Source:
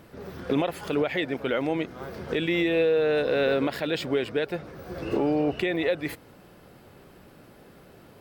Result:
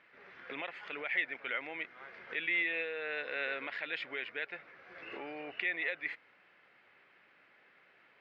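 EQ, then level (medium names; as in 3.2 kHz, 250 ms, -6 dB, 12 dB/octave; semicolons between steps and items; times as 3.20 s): band-pass filter 2.1 kHz, Q 2.9; distance through air 140 m; +2.5 dB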